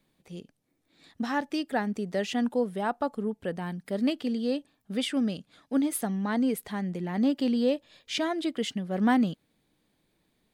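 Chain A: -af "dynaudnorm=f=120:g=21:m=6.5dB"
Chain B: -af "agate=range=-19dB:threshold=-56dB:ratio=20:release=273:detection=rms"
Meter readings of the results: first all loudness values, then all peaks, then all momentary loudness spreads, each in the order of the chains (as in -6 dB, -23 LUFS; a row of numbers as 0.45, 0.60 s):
-23.0, -29.5 LUFS; -8.0, -14.0 dBFS; 8, 9 LU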